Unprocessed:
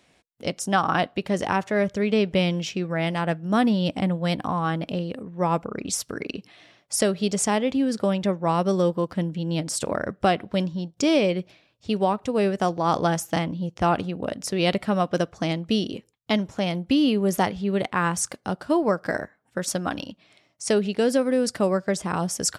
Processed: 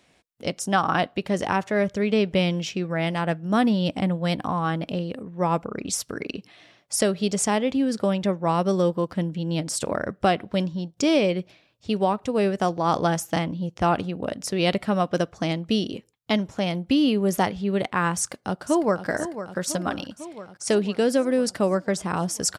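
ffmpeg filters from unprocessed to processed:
-filter_complex "[0:a]asplit=2[s0][s1];[s1]afade=t=in:st=18.16:d=0.01,afade=t=out:st=19.07:d=0.01,aecho=0:1:500|1000|1500|2000|2500|3000|3500|4000|4500|5000:0.281838|0.197287|0.138101|0.0966705|0.0676694|0.0473686|0.033158|0.0232106|0.0162474|0.0113732[s2];[s0][s2]amix=inputs=2:normalize=0"

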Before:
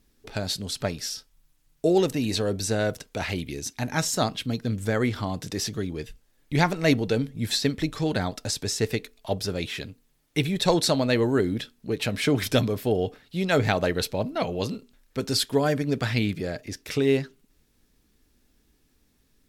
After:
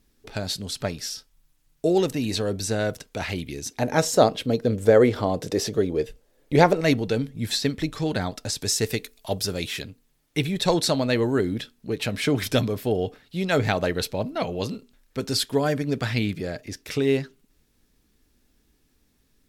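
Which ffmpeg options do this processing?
-filter_complex "[0:a]asettb=1/sr,asplit=3[s0][s1][s2];[s0]atrim=end=3.714[s3];[s1]atrim=start=3.71:end=6.81,asetpts=PTS-STARTPTS,afade=t=in:d=0.004:c=qsin,afade=t=out:st=3.096:d=0.004:c=qsin,equalizer=f=500:w=1.2:g=14[s4];[s2]atrim=start=6.806[s5];[s3][s4]acrossfade=d=0.004:c1=hsin:c2=qsin[s6];[s6][s5]acrossfade=d=0.004:c1=qsin:c2=hsin,asettb=1/sr,asplit=3[s7][s8][s9];[s7]atrim=end=8.614[s10];[s8]atrim=start=8.61:end=9.82,asetpts=PTS-STARTPTS,afade=t=in:d=0.004:c=qsin,afade=t=out:st=1.206:d=0.004:c=qsin,highshelf=f=5300:g=9.5[s11];[s9]atrim=start=9.816[s12];[s10][s11]acrossfade=d=0.004:c1=hsin:c2=qsin[s13];[s13][s12]acrossfade=d=0.004:c1=qsin:c2=hsin"

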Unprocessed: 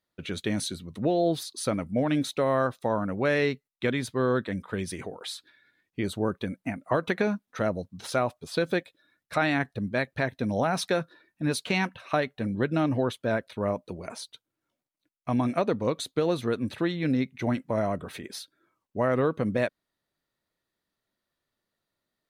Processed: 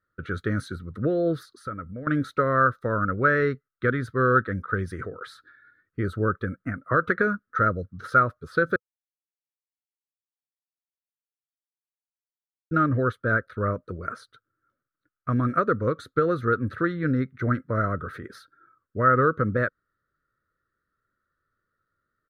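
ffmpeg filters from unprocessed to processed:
-filter_complex "[0:a]asettb=1/sr,asplit=3[s0][s1][s2];[s0]atrim=end=1.454[s3];[s1]atrim=start=1.45:end=2.07,asetpts=PTS-STARTPTS,afade=t=in:d=0.004:c=qsin,afade=t=out:st=0.616:d=0.004:c=qsin,acompressor=threshold=0.01:ratio=2.5:attack=3.2:release=140:knee=1:detection=peak[s4];[s2]atrim=start=2.066[s5];[s3][s4]acrossfade=d=0.004:c1=hsin:c2=qsin[s6];[s6][s5]acrossfade=d=0.004:c1=qsin:c2=hsin,asplit=3[s7][s8][s9];[s7]atrim=end=8.76,asetpts=PTS-STARTPTS,afade=t=out:st=8.756:d=0.004:c=hsin[s10];[s8]atrim=start=8.76:end=12.71,asetpts=PTS-STARTPTS,volume=0[s11];[s9]atrim=start=12.71,asetpts=PTS-STARTPTS,afade=t=in:d=0.004:c=hsin[s12];[s10][s11][s12]concat=n=3:v=0:a=1,firequalizer=gain_entry='entry(100,0);entry(190,-9);entry(300,-8);entry(490,-5);entry(830,-27);entry(1300,9);entry(2500,-23);entry(4200,-19);entry(7500,-25);entry(11000,-21)':delay=0.05:min_phase=1,volume=2.66"

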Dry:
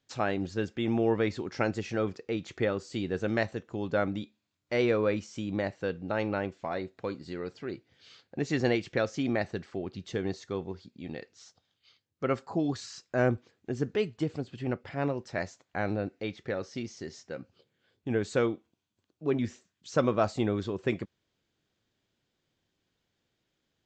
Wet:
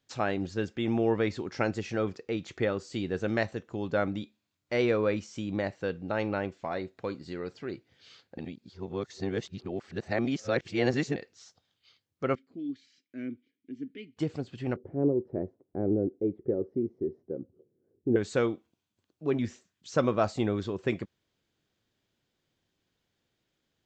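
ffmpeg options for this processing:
-filter_complex "[0:a]asettb=1/sr,asplit=3[s0][s1][s2];[s0]atrim=end=12.354[s3];[s1]atrim=start=12.35:end=14.17,asetpts=PTS-STARTPTS,afade=t=in:d=0.004:c=qsin,afade=t=out:st=1.816:d=0.004:c=qsin,asplit=3[s4][s5][s6];[s4]bandpass=f=270:t=q:w=8,volume=1[s7];[s5]bandpass=f=2290:t=q:w=8,volume=0.501[s8];[s6]bandpass=f=3010:t=q:w=8,volume=0.355[s9];[s7][s8][s9]amix=inputs=3:normalize=0[s10];[s2]atrim=start=14.166[s11];[s3][s10]acrossfade=d=0.004:c1=hsin:c2=qsin[s12];[s12][s11]acrossfade=d=0.004:c1=qsin:c2=hsin,asettb=1/sr,asplit=3[s13][s14][s15];[s13]atrim=end=14.764[s16];[s14]atrim=start=14.76:end=18.16,asetpts=PTS-STARTPTS,afade=t=in:d=0.004:c=qsin,afade=t=out:st=3.396:d=0.004:c=qsin,lowpass=f=380:t=q:w=3.5[s17];[s15]atrim=start=18.156[s18];[s16][s17]acrossfade=d=0.004:c1=hsin:c2=qsin[s19];[s19][s18]acrossfade=d=0.004:c1=qsin:c2=hsin,asplit=3[s20][s21][s22];[s20]atrim=end=8.382[s23];[s21]atrim=start=8.378:end=11.162,asetpts=PTS-STARTPTS,areverse[s24];[s22]atrim=start=11.158[s25];[s23][s24]acrossfade=d=0.004:c1=hsin:c2=hsin[s26];[s26][s25]acrossfade=d=0.004:c1=hsin:c2=hsin"

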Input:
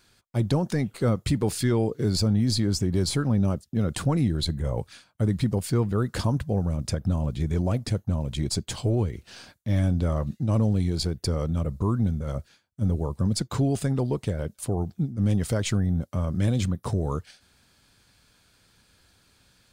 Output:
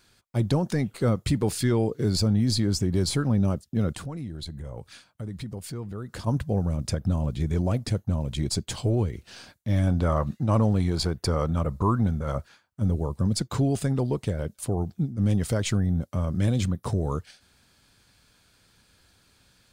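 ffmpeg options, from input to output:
-filter_complex "[0:a]asplit=3[s0][s1][s2];[s0]afade=t=out:st=3.92:d=0.02[s3];[s1]acompressor=threshold=0.0141:ratio=2.5:attack=3.2:release=140:knee=1:detection=peak,afade=t=in:st=3.92:d=0.02,afade=t=out:st=6.26:d=0.02[s4];[s2]afade=t=in:st=6.26:d=0.02[s5];[s3][s4][s5]amix=inputs=3:normalize=0,asettb=1/sr,asplit=3[s6][s7][s8];[s6]atrim=end=9.874[s9];[s7]atrim=start=9.87:end=12.82,asetpts=PTS-STARTPTS,afade=t=in:d=0.004:c=qsin,afade=t=out:st=2.946:d=0.004:c=qsin,equalizer=f=1100:t=o:w=1.7:g=9[s10];[s8]atrim=start=12.816[s11];[s9][s10]acrossfade=d=0.004:c1=hsin:c2=qsin[s12];[s12][s11]acrossfade=d=0.004:c1=qsin:c2=hsin"

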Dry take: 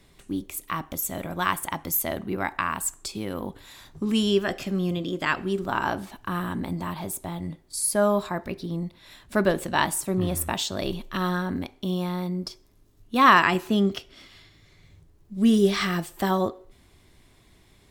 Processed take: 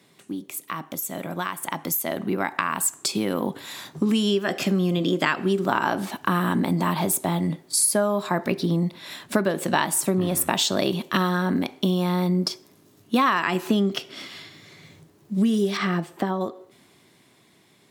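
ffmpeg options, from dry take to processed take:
-filter_complex "[0:a]asettb=1/sr,asplit=3[s0][s1][s2];[s0]atrim=end=15.774[s3];[s1]atrim=start=15.77:end=16.41,asetpts=PTS-STARTPTS,afade=t=in:d=0.004:c=qsin,afade=t=out:st=0.636:d=0.004:c=qsin,lowpass=f=1500:p=1[s4];[s2]atrim=start=16.406[s5];[s3][s4]acrossfade=d=0.004:c1=hsin:c2=qsin[s6];[s6][s5]acrossfade=d=0.004:c1=qsin:c2=hsin,acompressor=threshold=0.0398:ratio=20,highpass=f=140:w=0.5412,highpass=f=140:w=1.3066,dynaudnorm=f=310:g=13:m=2.99,volume=1.19"

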